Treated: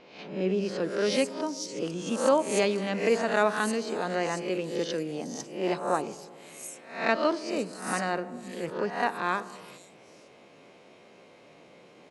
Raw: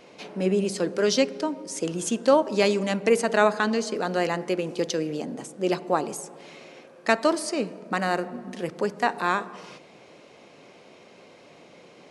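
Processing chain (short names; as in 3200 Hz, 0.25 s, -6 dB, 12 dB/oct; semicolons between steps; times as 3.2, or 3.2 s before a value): spectral swells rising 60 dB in 0.51 s; bands offset in time lows, highs 0.5 s, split 5400 Hz; gain -5 dB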